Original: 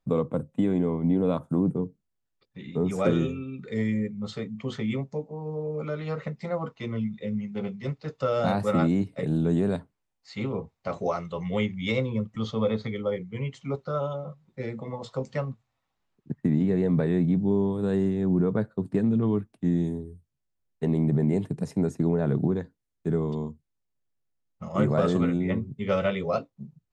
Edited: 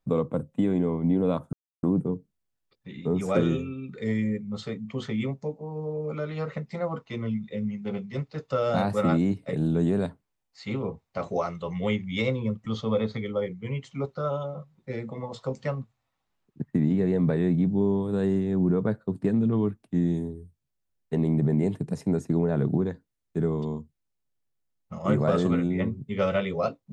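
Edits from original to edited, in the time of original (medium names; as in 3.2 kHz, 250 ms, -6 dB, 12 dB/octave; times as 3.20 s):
1.53 s: insert silence 0.30 s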